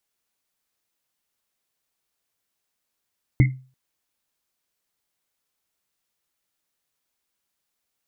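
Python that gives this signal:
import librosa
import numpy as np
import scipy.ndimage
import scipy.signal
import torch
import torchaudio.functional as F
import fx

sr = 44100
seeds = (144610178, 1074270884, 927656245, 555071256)

y = fx.risset_drum(sr, seeds[0], length_s=0.34, hz=130.0, decay_s=0.37, noise_hz=2100.0, noise_width_hz=180.0, noise_pct=15)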